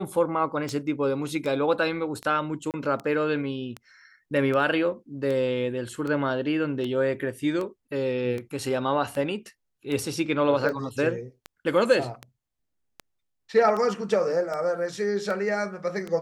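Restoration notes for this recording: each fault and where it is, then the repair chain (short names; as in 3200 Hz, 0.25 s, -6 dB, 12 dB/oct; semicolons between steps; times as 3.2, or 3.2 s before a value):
tick 78 rpm -20 dBFS
2.71–2.74 gap 28 ms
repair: de-click; interpolate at 2.71, 28 ms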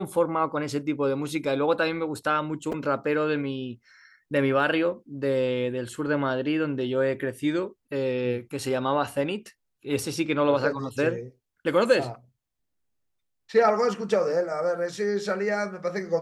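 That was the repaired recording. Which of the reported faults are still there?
none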